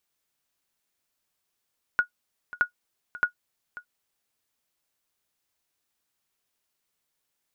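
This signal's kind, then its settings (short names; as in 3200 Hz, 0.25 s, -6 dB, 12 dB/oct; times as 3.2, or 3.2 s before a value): sonar ping 1450 Hz, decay 0.10 s, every 0.62 s, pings 3, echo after 0.54 s, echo -17.5 dB -12 dBFS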